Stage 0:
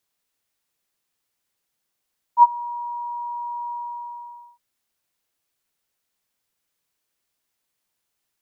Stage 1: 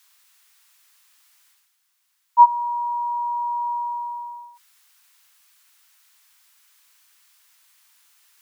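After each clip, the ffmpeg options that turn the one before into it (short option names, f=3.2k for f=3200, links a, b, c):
-af "highpass=f=990:w=0.5412,highpass=f=990:w=1.3066,areverse,acompressor=mode=upward:threshold=-56dB:ratio=2.5,areverse,alimiter=level_in=11.5dB:limit=-1dB:release=50:level=0:latency=1,volume=-3dB"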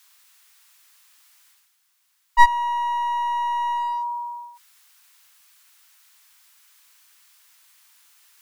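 -af "aeval=exprs='clip(val(0),-1,0.0473)':c=same,volume=2.5dB"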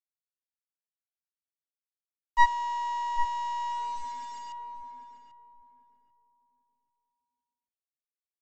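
-filter_complex "[0:a]aresample=16000,acrusher=bits=6:mix=0:aa=0.000001,aresample=44100,asplit=2[a][b];[b]adelay=791,lowpass=f=840:p=1,volume=-4dB,asplit=2[c][d];[d]adelay=791,lowpass=f=840:p=1,volume=0.29,asplit=2[e][f];[f]adelay=791,lowpass=f=840:p=1,volume=0.29,asplit=2[g][h];[h]adelay=791,lowpass=f=840:p=1,volume=0.29[i];[a][c][e][g][i]amix=inputs=5:normalize=0,volume=-7.5dB"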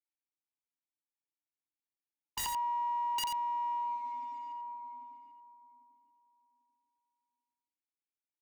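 -filter_complex "[0:a]asplit=3[a][b][c];[a]bandpass=f=300:t=q:w=8,volume=0dB[d];[b]bandpass=f=870:t=q:w=8,volume=-6dB[e];[c]bandpass=f=2.24k:t=q:w=8,volume=-9dB[f];[d][e][f]amix=inputs=3:normalize=0,aeval=exprs='(mod(66.8*val(0)+1,2)-1)/66.8':c=same,aecho=1:1:88:0.473,volume=6dB"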